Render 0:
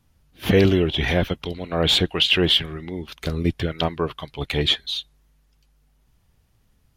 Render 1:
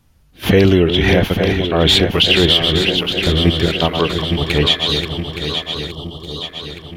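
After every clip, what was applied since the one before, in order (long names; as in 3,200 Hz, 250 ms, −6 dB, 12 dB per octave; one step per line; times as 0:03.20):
feedback delay that plays each chunk backwards 434 ms, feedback 74%, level −7 dB
gain on a spectral selection 0:05.90–0:06.43, 1,300–2,800 Hz −15 dB
boost into a limiter +8 dB
level −1 dB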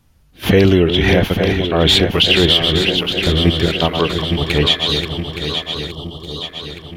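no processing that can be heard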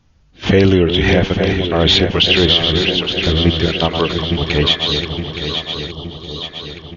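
linear-phase brick-wall low-pass 6,900 Hz
single-tap delay 676 ms −19 dB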